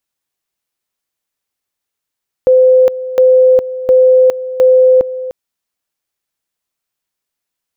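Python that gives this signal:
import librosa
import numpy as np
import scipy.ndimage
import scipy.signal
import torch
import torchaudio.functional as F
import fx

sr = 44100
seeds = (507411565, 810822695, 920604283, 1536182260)

y = fx.two_level_tone(sr, hz=513.0, level_db=-4.0, drop_db=14.5, high_s=0.41, low_s=0.3, rounds=4)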